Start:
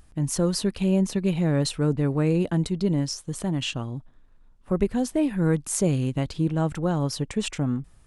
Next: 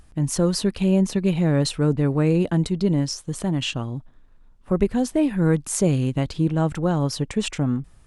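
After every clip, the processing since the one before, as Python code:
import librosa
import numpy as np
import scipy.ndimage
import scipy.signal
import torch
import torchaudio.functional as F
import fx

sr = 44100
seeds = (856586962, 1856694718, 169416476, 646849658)

y = fx.high_shelf(x, sr, hz=9700.0, db=-4.0)
y = F.gain(torch.from_numpy(y), 3.0).numpy()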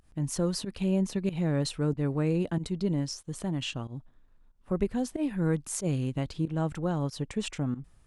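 y = fx.volume_shaper(x, sr, bpm=93, per_beat=1, depth_db=-17, release_ms=103.0, shape='fast start')
y = F.gain(torch.from_numpy(y), -8.0).numpy()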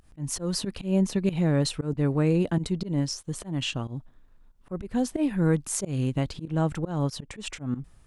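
y = fx.auto_swell(x, sr, attack_ms=150.0)
y = F.gain(torch.from_numpy(y), 4.5).numpy()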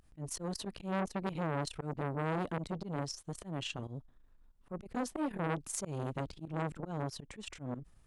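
y = fx.transformer_sat(x, sr, knee_hz=1100.0)
y = F.gain(torch.from_numpy(y), -6.5).numpy()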